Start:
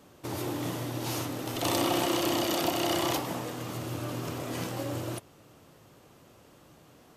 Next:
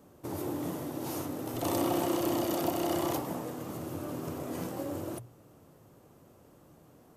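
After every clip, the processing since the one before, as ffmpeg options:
-af "equalizer=f=3.3k:t=o:w=2.6:g=-11,bandreject=f=60:t=h:w=6,bandreject=f=120:t=h:w=6"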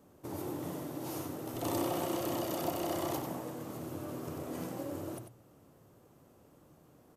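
-af "aecho=1:1:94:0.398,volume=-4dB"

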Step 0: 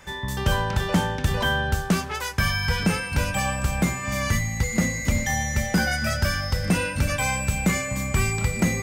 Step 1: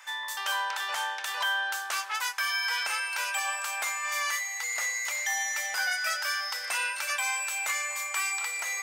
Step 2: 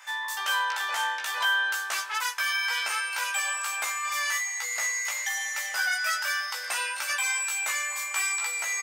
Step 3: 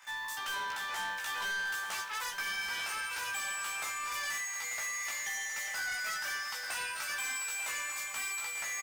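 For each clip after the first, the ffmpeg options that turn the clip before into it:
-af "highpass=f=870:w=0.5412,highpass=f=870:w=1.3066,alimiter=limit=-19.5dB:level=0:latency=1:release=159"
-filter_complex "[0:a]asplit=2[a][b];[b]adelay=16,volume=-3dB[c];[a][c]amix=inputs=2:normalize=0"
-filter_complex "[0:a]asplit=2[a][b];[b]acrusher=bits=6:mix=0:aa=0.000001,volume=-7dB[c];[a][c]amix=inputs=2:normalize=0,asoftclip=type=tanh:threshold=-25.5dB,aecho=1:1:892:0.376,volume=-7.5dB"

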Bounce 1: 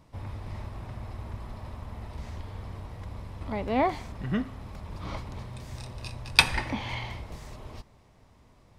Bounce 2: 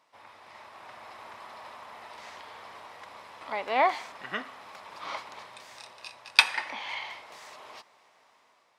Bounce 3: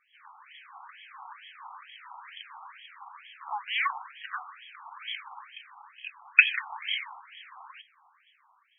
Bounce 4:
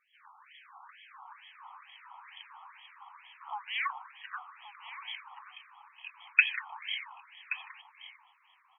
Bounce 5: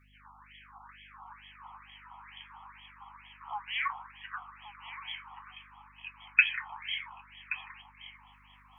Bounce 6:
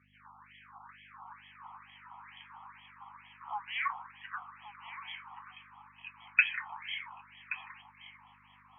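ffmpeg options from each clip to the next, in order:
-af "highpass=860,highshelf=f=7.1k:g=-9,dynaudnorm=f=320:g=5:m=7dB"
-af "equalizer=f=2.8k:w=6.9:g=-11,aexciter=amount=6.2:drive=9.2:freq=3k,afftfilt=real='re*between(b*sr/1024,970*pow(2400/970,0.5+0.5*sin(2*PI*2.2*pts/sr))/1.41,970*pow(2400/970,0.5+0.5*sin(2*PI*2.2*pts/sr))*1.41)':imag='im*between(b*sr/1024,970*pow(2400/970,0.5+0.5*sin(2*PI*2.2*pts/sr))/1.41,970*pow(2400/970,0.5+0.5*sin(2*PI*2.2*pts/sr))*1.41)':win_size=1024:overlap=0.75,volume=3dB"
-af "aecho=1:1:1126:0.2,volume=-5dB"
-af "areverse,acompressor=mode=upward:threshold=-53dB:ratio=2.5,areverse,flanger=delay=8.6:depth=5.4:regen=-51:speed=0.67:shape=sinusoidal,aeval=exprs='val(0)+0.000447*(sin(2*PI*50*n/s)+sin(2*PI*2*50*n/s)/2+sin(2*PI*3*50*n/s)/3+sin(2*PI*4*50*n/s)/4+sin(2*PI*5*50*n/s)/5)':c=same,volume=4.5dB"
-af "highpass=100,lowpass=2.6k"

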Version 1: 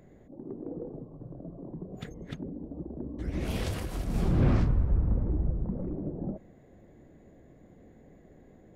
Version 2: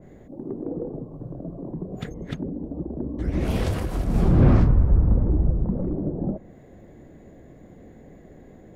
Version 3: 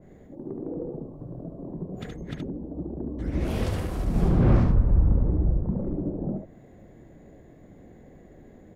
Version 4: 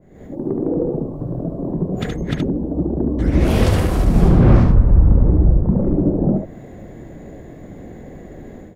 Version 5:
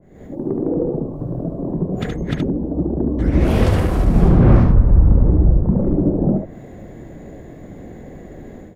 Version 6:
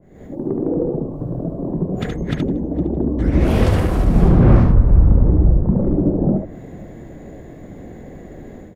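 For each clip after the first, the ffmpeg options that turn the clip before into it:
-af "adynamicequalizer=threshold=0.00178:dfrequency=1800:dqfactor=0.7:tfrequency=1800:tqfactor=0.7:attack=5:release=100:ratio=0.375:range=3.5:mode=cutabove:tftype=highshelf,volume=8dB"
-af "aecho=1:1:72:0.596,volume=-4dB"
-af "dynaudnorm=f=120:g=3:m=13.5dB"
-af "adynamicequalizer=threshold=0.00891:dfrequency=2900:dqfactor=0.7:tfrequency=2900:tqfactor=0.7:attack=5:release=100:ratio=0.375:range=3:mode=cutabove:tftype=highshelf"
-af "aecho=1:1:460|920:0.0668|0.0201"

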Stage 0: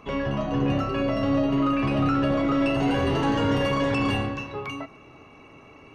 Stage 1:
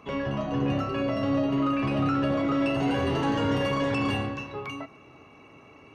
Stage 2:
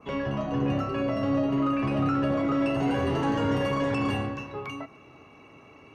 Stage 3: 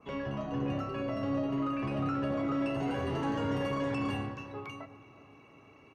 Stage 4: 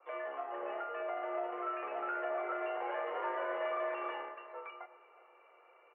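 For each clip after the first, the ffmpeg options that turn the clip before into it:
-af "highpass=62,volume=-2.5dB"
-af "adynamicequalizer=threshold=0.00355:dfrequency=3700:dqfactor=1.2:tfrequency=3700:tqfactor=1.2:attack=5:release=100:ratio=0.375:range=2.5:mode=cutabove:tftype=bell"
-filter_complex "[0:a]asplit=2[a][b];[b]adelay=369,lowpass=f=2k:p=1,volume=-17dB,asplit=2[c][d];[d]adelay=369,lowpass=f=2k:p=1,volume=0.52,asplit=2[e][f];[f]adelay=369,lowpass=f=2k:p=1,volume=0.52,asplit=2[g][h];[h]adelay=369,lowpass=f=2k:p=1,volume=0.52,asplit=2[i][j];[j]adelay=369,lowpass=f=2k:p=1,volume=0.52[k];[a][c][e][g][i][k]amix=inputs=6:normalize=0,volume=-6.5dB"
-af "aeval=exprs='0.0841*(cos(1*acos(clip(val(0)/0.0841,-1,1)))-cos(1*PI/2))+0.00237*(cos(7*acos(clip(val(0)/0.0841,-1,1)))-cos(7*PI/2))':c=same,highpass=f=420:t=q:w=0.5412,highpass=f=420:t=q:w=1.307,lowpass=f=2.3k:t=q:w=0.5176,lowpass=f=2.3k:t=q:w=0.7071,lowpass=f=2.3k:t=q:w=1.932,afreqshift=79"

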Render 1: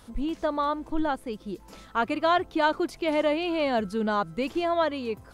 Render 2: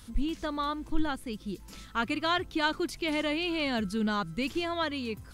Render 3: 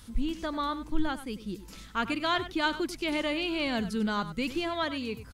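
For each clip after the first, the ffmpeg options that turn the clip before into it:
-af "equalizer=f=650:w=0.64:g=-14,volume=4dB"
-af "aecho=1:1:96:0.211"

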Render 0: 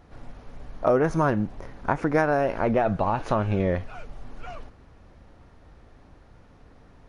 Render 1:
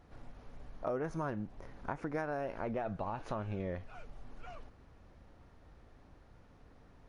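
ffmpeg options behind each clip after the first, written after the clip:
-af "acompressor=threshold=-39dB:ratio=1.5,volume=-7.5dB"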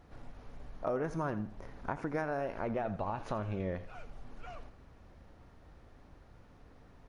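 -af "aecho=1:1:84|168|252:0.178|0.0569|0.0182,volume=2dB"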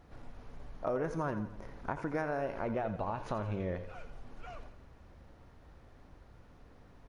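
-af "aecho=1:1:86|172|258|344|430:0.224|0.112|0.056|0.028|0.014"

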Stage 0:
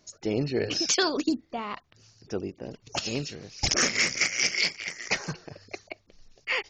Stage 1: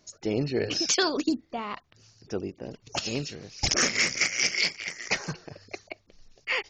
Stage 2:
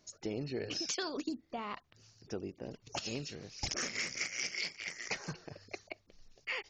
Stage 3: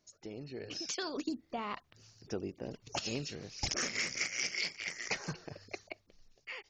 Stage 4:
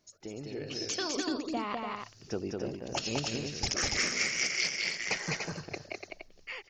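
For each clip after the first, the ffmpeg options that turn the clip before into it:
-af anull
-af "acompressor=threshold=-31dB:ratio=3,volume=-5dB"
-af "dynaudnorm=f=270:g=7:m=9.5dB,volume=-7.5dB"
-af "aecho=1:1:204.1|291.5:0.708|0.501,volume=3dB"

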